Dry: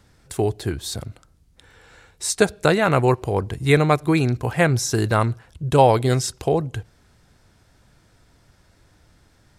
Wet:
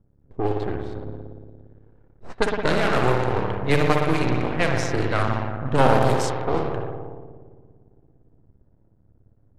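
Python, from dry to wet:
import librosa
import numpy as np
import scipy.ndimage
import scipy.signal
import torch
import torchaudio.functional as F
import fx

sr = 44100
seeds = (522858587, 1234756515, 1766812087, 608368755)

y = fx.rev_spring(x, sr, rt60_s=2.4, pass_ms=(57,), chirp_ms=55, drr_db=0.0)
y = np.maximum(y, 0.0)
y = fx.env_lowpass(y, sr, base_hz=400.0, full_db=-13.0)
y = F.gain(torch.from_numpy(y), -1.0).numpy()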